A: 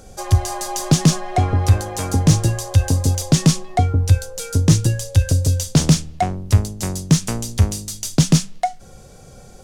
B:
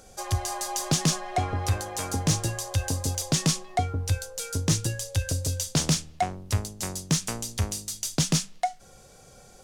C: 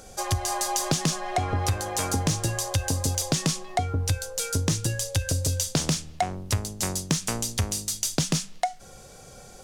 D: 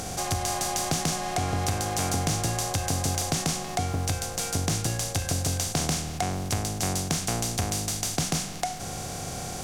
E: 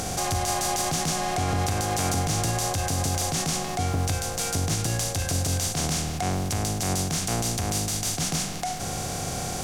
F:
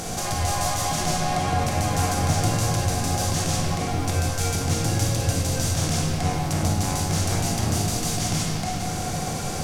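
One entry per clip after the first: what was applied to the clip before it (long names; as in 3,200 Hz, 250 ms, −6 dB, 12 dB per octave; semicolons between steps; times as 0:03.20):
low-shelf EQ 420 Hz −9 dB; level −4 dB
downward compressor, threshold −26 dBFS, peak gain reduction 8.5 dB; level +5 dB
compressor on every frequency bin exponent 0.4; level −6.5 dB
brickwall limiter −19.5 dBFS, peak gain reduction 10.5 dB; level +4 dB
rectangular room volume 210 cubic metres, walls hard, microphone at 0.69 metres; level −2.5 dB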